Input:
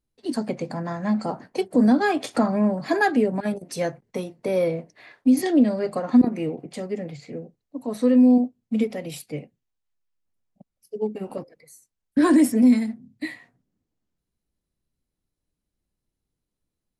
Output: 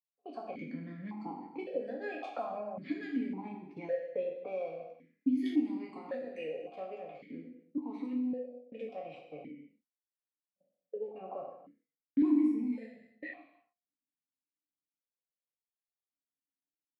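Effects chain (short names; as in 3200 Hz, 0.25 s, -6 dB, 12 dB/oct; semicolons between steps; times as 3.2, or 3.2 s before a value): spectral trails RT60 0.32 s; low-pass opened by the level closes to 1000 Hz, open at -16.5 dBFS; gate -41 dBFS, range -19 dB; 5.45–8.13 tilt +2.5 dB/oct; compressor 4:1, threshold -31 dBFS, peak gain reduction 16 dB; non-linear reverb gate 0.33 s falling, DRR 2 dB; vowel sequencer 1.8 Hz; gain +4 dB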